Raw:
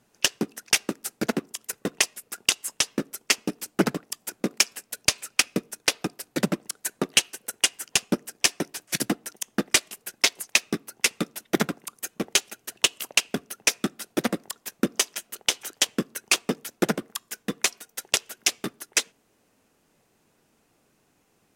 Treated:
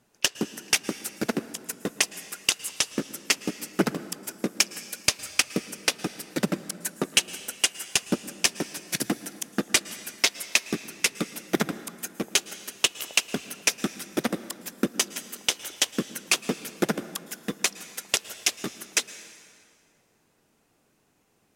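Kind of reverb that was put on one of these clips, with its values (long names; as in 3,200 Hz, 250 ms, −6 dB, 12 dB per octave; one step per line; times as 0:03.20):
dense smooth reverb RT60 2.3 s, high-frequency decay 0.75×, pre-delay 100 ms, DRR 14.5 dB
level −1.5 dB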